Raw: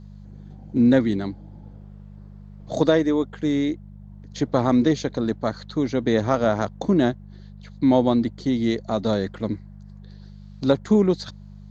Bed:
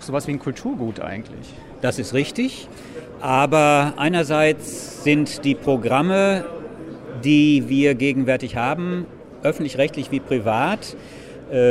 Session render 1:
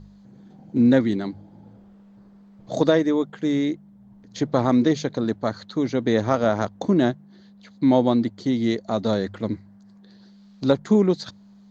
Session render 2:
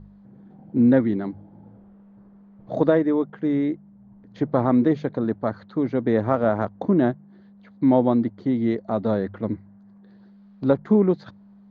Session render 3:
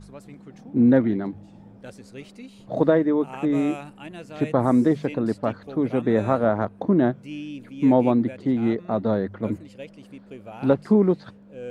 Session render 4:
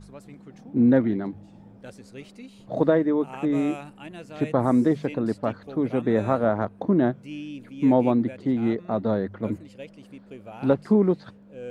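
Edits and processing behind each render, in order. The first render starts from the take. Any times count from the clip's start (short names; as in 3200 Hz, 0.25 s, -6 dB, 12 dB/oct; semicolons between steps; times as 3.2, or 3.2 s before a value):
de-hum 50 Hz, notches 3
LPF 1700 Hz 12 dB/oct
add bed -20.5 dB
gain -1.5 dB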